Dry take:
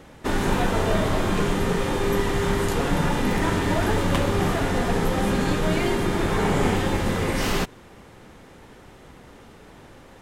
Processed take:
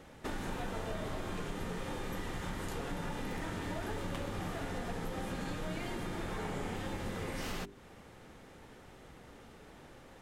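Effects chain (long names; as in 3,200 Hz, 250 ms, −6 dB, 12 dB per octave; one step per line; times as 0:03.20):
mains-hum notches 50/100/150/200/250/300/350/400 Hz
downward compressor 3 to 1, threshold −31 dBFS, peak gain reduction 10.5 dB
notch filter 1,000 Hz, Q 22
level −7 dB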